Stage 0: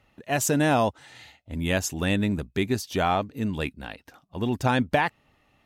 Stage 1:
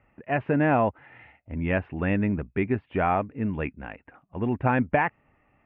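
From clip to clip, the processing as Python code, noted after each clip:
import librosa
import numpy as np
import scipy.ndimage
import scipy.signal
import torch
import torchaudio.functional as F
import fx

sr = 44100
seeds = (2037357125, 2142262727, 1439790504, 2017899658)

y = scipy.signal.sosfilt(scipy.signal.butter(8, 2500.0, 'lowpass', fs=sr, output='sos'), x)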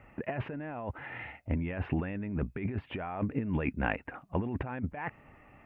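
y = fx.over_compress(x, sr, threshold_db=-34.0, ratio=-1.0)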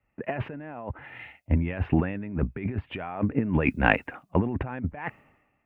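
y = fx.band_widen(x, sr, depth_pct=100)
y = y * 10.0 ** (5.5 / 20.0)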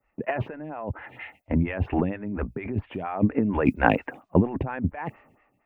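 y = fx.stagger_phaser(x, sr, hz=4.3)
y = y * 10.0 ** (5.5 / 20.0)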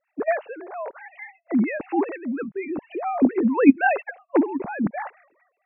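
y = fx.sine_speech(x, sr)
y = y * 10.0 ** (3.0 / 20.0)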